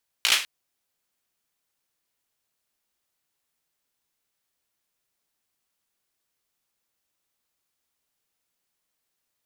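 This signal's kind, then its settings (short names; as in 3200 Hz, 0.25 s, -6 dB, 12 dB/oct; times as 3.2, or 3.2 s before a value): hand clap length 0.20 s, bursts 5, apart 17 ms, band 2800 Hz, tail 0.34 s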